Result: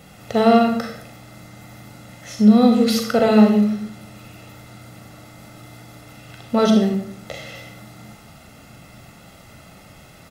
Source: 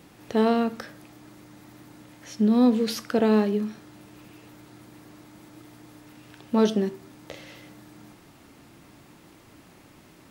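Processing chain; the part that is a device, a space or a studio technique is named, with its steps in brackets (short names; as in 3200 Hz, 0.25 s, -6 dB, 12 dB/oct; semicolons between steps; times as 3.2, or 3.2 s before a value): microphone above a desk (comb 1.5 ms, depth 65%; reverb RT60 0.60 s, pre-delay 35 ms, DRR 3 dB); gain +5 dB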